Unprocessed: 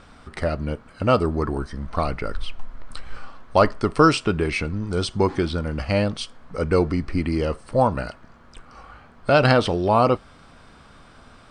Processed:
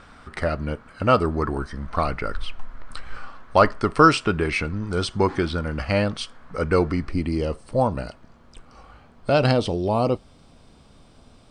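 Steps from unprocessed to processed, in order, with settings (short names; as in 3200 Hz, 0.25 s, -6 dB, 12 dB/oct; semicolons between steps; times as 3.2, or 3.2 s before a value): bell 1500 Hz +4.5 dB 1.3 oct, from 7.09 s -6 dB, from 9.51 s -12.5 dB; gain -1 dB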